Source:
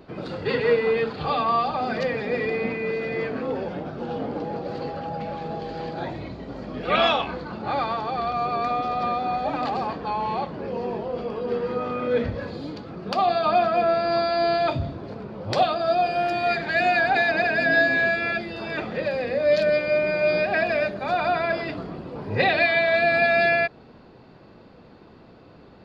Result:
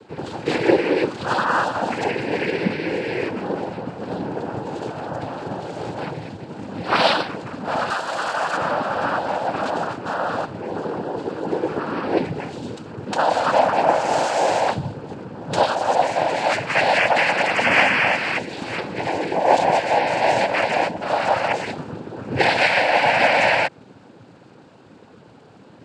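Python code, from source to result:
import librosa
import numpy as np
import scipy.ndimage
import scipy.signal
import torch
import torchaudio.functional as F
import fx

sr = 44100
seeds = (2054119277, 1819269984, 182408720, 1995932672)

y = fx.noise_vocoder(x, sr, seeds[0], bands=8)
y = fx.tilt_eq(y, sr, slope=3.0, at=(7.9, 8.57))
y = y * 10.0 ** (3.0 / 20.0)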